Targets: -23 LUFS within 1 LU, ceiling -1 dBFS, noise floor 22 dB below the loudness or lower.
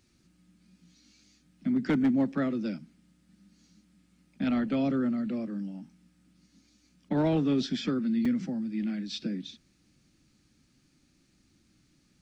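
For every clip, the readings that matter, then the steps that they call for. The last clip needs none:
clipped 0.3%; flat tops at -19.5 dBFS; dropouts 1; longest dropout 3.9 ms; loudness -29.5 LUFS; peak -19.5 dBFS; loudness target -23.0 LUFS
-> clip repair -19.5 dBFS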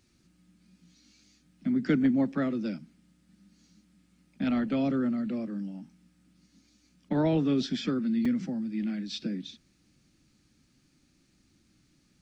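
clipped 0.0%; dropouts 1; longest dropout 3.9 ms
-> interpolate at 8.25, 3.9 ms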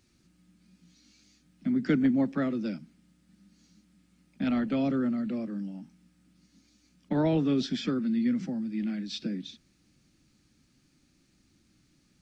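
dropouts 0; loudness -29.5 LUFS; peak -13.5 dBFS; loudness target -23.0 LUFS
-> gain +6.5 dB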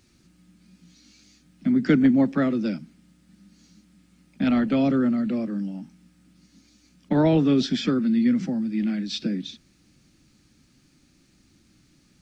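loudness -23.0 LUFS; peak -7.0 dBFS; noise floor -61 dBFS

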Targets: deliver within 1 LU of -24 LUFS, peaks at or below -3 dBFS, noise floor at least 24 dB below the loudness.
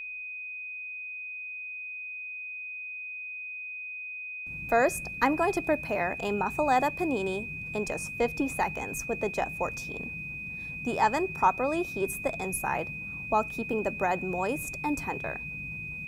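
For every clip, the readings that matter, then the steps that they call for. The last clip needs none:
steady tone 2500 Hz; tone level -36 dBFS; loudness -30.5 LUFS; peak -11.0 dBFS; loudness target -24.0 LUFS
-> notch 2500 Hz, Q 30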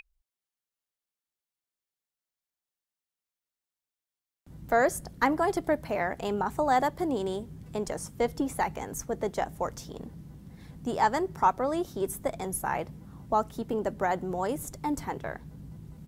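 steady tone none; loudness -30.0 LUFS; peak -11.0 dBFS; loudness target -24.0 LUFS
-> gain +6 dB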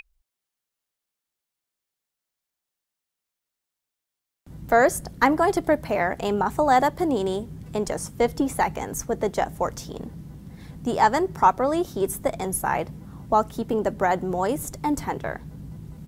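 loudness -24.0 LUFS; peak -5.0 dBFS; noise floor -86 dBFS

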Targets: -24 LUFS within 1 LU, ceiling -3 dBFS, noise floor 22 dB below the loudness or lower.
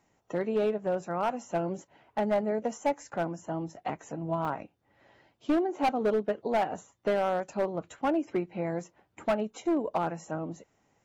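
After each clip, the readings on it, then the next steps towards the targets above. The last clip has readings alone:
clipped 1.2%; flat tops at -21.0 dBFS; dropouts 1; longest dropout 3.4 ms; loudness -31.5 LUFS; peak -21.0 dBFS; loudness target -24.0 LUFS
-> clip repair -21 dBFS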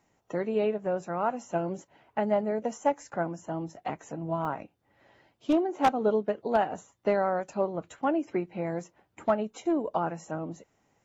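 clipped 0.0%; dropouts 1; longest dropout 3.4 ms
-> interpolate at 4.45, 3.4 ms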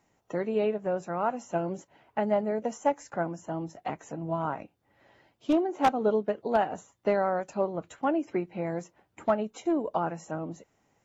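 dropouts 0; loudness -30.5 LUFS; peak -12.0 dBFS; loudness target -24.0 LUFS
-> gain +6.5 dB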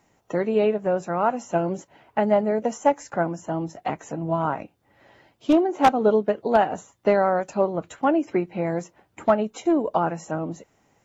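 loudness -24.0 LUFS; peak -5.5 dBFS; noise floor -66 dBFS

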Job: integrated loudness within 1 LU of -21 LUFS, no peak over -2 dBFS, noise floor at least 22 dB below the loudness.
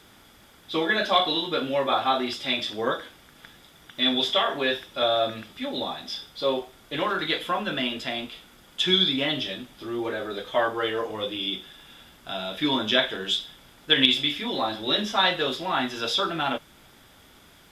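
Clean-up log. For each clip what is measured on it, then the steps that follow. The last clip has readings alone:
ticks 31/s; loudness -25.0 LUFS; peak -3.0 dBFS; loudness target -21.0 LUFS
-> de-click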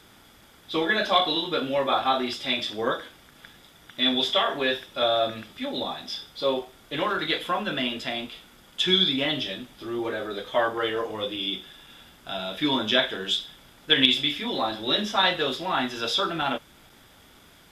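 ticks 0.056/s; loudness -25.0 LUFS; peak -3.0 dBFS; loudness target -21.0 LUFS
-> gain +4 dB; limiter -2 dBFS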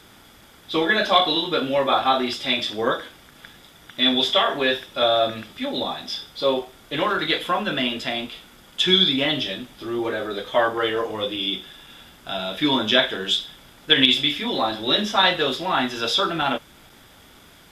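loudness -21.5 LUFS; peak -2.0 dBFS; noise floor -50 dBFS

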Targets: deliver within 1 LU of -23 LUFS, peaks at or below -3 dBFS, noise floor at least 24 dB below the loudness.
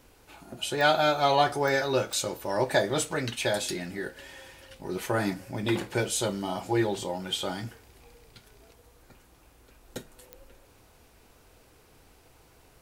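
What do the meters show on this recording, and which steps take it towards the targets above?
clicks 4; loudness -28.0 LUFS; peak -10.0 dBFS; loudness target -23.0 LUFS
-> de-click; gain +5 dB

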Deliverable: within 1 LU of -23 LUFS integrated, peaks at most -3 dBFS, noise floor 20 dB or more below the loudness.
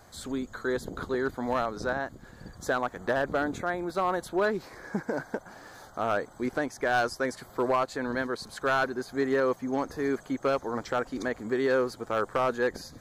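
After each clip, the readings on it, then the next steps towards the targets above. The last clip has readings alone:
clipped 0.4%; flat tops at -18.5 dBFS; loudness -30.0 LUFS; peak -18.5 dBFS; loudness target -23.0 LUFS
-> clip repair -18.5 dBFS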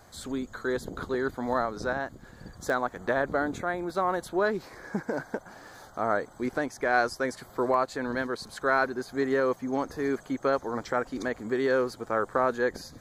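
clipped 0.0%; loudness -29.5 LUFS; peak -10.0 dBFS; loudness target -23.0 LUFS
-> gain +6.5 dB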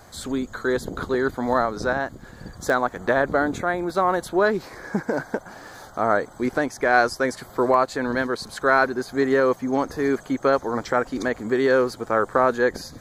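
loudness -23.0 LUFS; peak -3.5 dBFS; noise floor -46 dBFS

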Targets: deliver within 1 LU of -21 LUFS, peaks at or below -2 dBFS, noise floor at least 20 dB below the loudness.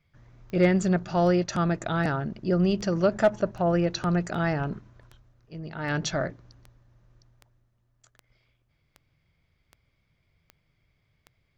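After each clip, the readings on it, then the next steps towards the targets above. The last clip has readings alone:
clicks 15; loudness -26.0 LUFS; peak -11.5 dBFS; loudness target -21.0 LUFS
-> de-click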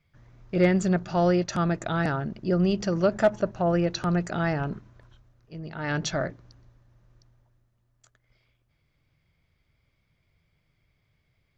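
clicks 0; loudness -26.0 LUFS; peak -10.0 dBFS; loudness target -21.0 LUFS
-> gain +5 dB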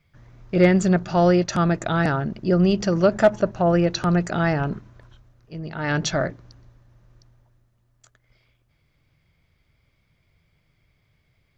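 loudness -21.0 LUFS; peak -5.0 dBFS; noise floor -67 dBFS

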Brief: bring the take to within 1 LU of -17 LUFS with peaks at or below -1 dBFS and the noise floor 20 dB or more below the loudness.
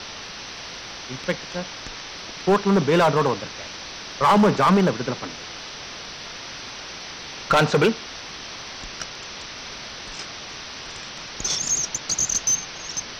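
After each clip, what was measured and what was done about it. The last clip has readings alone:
clipped 1.0%; flat tops at -12.0 dBFS; noise floor -37 dBFS; noise floor target -45 dBFS; loudness -24.5 LUFS; peak -12.0 dBFS; loudness target -17.0 LUFS
-> clip repair -12 dBFS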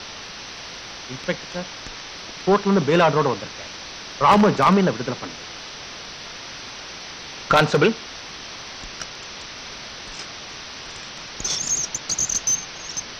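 clipped 0.0%; noise floor -37 dBFS; noise floor target -41 dBFS
-> denoiser 6 dB, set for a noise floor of -37 dBFS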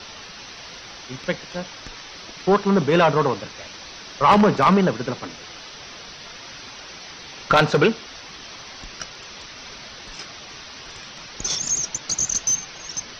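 noise floor -40 dBFS; noise floor target -41 dBFS
-> denoiser 6 dB, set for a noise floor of -40 dBFS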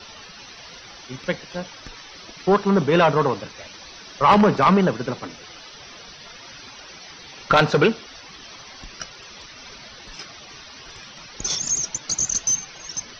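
noise floor -43 dBFS; loudness -20.5 LUFS; peak -3.0 dBFS; loudness target -17.0 LUFS
-> gain +3.5 dB; limiter -1 dBFS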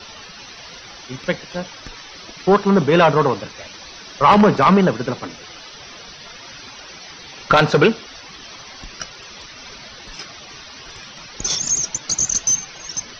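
loudness -17.0 LUFS; peak -1.0 dBFS; noise floor -39 dBFS

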